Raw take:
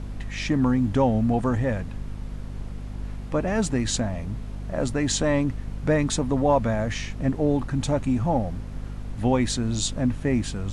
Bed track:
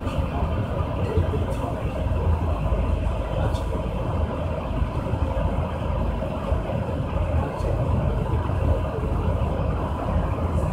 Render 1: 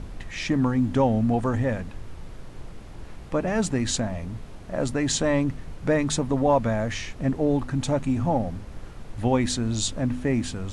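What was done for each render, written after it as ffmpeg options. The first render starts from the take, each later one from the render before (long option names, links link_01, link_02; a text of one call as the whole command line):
ffmpeg -i in.wav -af "bandreject=frequency=50:width_type=h:width=4,bandreject=frequency=100:width_type=h:width=4,bandreject=frequency=150:width_type=h:width=4,bandreject=frequency=200:width_type=h:width=4,bandreject=frequency=250:width_type=h:width=4" out.wav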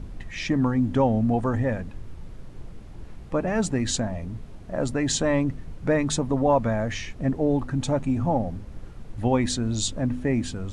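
ffmpeg -i in.wav -af "afftdn=noise_reduction=6:noise_floor=-41" out.wav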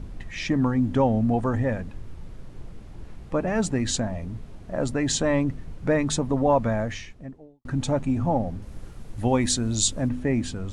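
ffmpeg -i in.wav -filter_complex "[0:a]asettb=1/sr,asplit=3[link_01][link_02][link_03];[link_01]atrim=end=8.624[link_04];[link_02]atrim=start=8.62:end=10.09,asetpts=PTS-STARTPTS,afade=type=in:duration=0.004:curve=qsin,afade=type=out:start_time=1.466:duration=0.004:curve=qsin,highshelf=frequency=6500:gain=11[link_05];[link_03]atrim=start=10.086[link_06];[link_04][link_05]acrossfade=duration=0.004:curve1=hsin:curve2=qsin[link_07];[link_07][link_06]acrossfade=duration=0.004:curve1=qsin:curve2=hsin,asplit=2[link_08][link_09];[link_08]atrim=end=7.65,asetpts=PTS-STARTPTS,afade=type=out:start_time=6.8:duration=0.85:curve=qua[link_10];[link_09]atrim=start=7.65,asetpts=PTS-STARTPTS,afade=type=in:duration=0.004:curve=hsin[link_11];[link_10][link_11]concat=n=2:v=0:a=1" out.wav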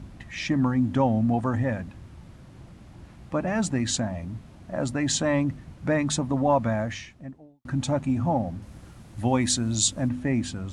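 ffmpeg -i in.wav -af "highpass=69,equalizer=frequency=440:width_type=o:width=0.34:gain=-9.5" out.wav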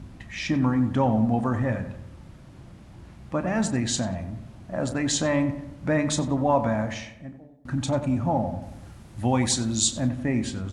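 ffmpeg -i in.wav -filter_complex "[0:a]asplit=2[link_01][link_02];[link_02]adelay=32,volume=-12dB[link_03];[link_01][link_03]amix=inputs=2:normalize=0,asplit=2[link_04][link_05];[link_05]adelay=92,lowpass=frequency=2100:poles=1,volume=-10dB,asplit=2[link_06][link_07];[link_07]adelay=92,lowpass=frequency=2100:poles=1,volume=0.52,asplit=2[link_08][link_09];[link_09]adelay=92,lowpass=frequency=2100:poles=1,volume=0.52,asplit=2[link_10][link_11];[link_11]adelay=92,lowpass=frequency=2100:poles=1,volume=0.52,asplit=2[link_12][link_13];[link_13]adelay=92,lowpass=frequency=2100:poles=1,volume=0.52,asplit=2[link_14][link_15];[link_15]adelay=92,lowpass=frequency=2100:poles=1,volume=0.52[link_16];[link_04][link_06][link_08][link_10][link_12][link_14][link_16]amix=inputs=7:normalize=0" out.wav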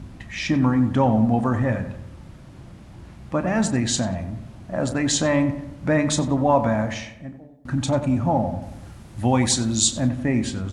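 ffmpeg -i in.wav -af "volume=3.5dB" out.wav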